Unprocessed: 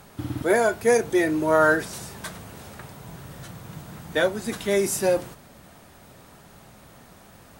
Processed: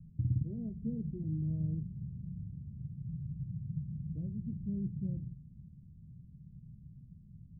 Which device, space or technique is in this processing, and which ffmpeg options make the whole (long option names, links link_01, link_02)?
the neighbour's flat through the wall: -filter_complex "[0:a]asettb=1/sr,asplit=3[link_01][link_02][link_03];[link_01]atrim=end=0.574[link_04];[link_02]atrim=start=0.57:end=1.24,asetpts=PTS-STARTPTS,afade=type=in:duration=0.004:curve=qsin,afade=type=out:start_time=0.666:duration=0.004:curve=qsin,aecho=1:1:4.7:0.85,atrim=end_sample=29547[link_05];[link_03]atrim=start=1.236[link_06];[link_04][link_05]acrossfade=duration=0.004:curve1=hsin:curve2=qsin[link_07];[link_07][link_06]acrossfade=duration=0.004:curve1=qsin:curve2=hsin,lowpass=frequency=160:width=0.5412,lowpass=frequency=160:width=1.3066,equalizer=frequency=160:width_type=o:width=0.8:gain=6"